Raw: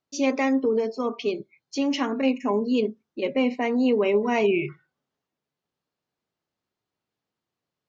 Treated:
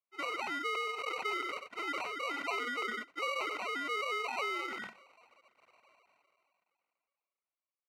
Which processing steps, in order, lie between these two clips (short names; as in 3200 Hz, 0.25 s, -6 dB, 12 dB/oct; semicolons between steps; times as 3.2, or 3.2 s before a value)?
sine-wave speech; limiter -17.5 dBFS, peak gain reduction 8 dB; compressor, threshold -29 dBFS, peak gain reduction 8.5 dB; sample-and-hold 26×; band-pass 1800 Hz, Q 2; echo 93 ms -22.5 dB; sustainer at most 22 dB/s; gain +6 dB